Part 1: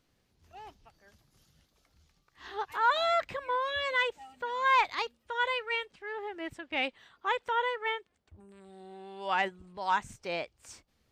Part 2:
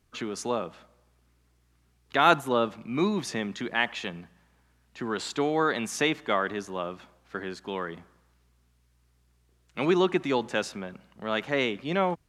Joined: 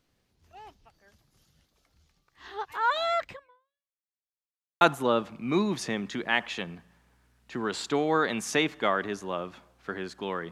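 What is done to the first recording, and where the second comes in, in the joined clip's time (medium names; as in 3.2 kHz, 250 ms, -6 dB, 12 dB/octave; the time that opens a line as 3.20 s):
part 1
3.30–4.04 s: fade out exponential
4.04–4.81 s: mute
4.81 s: go over to part 2 from 2.27 s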